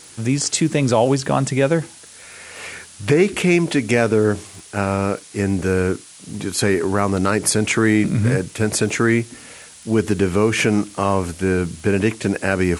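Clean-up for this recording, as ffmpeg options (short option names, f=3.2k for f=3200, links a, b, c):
-af "adeclick=t=4,afftdn=nr=23:nf=-42"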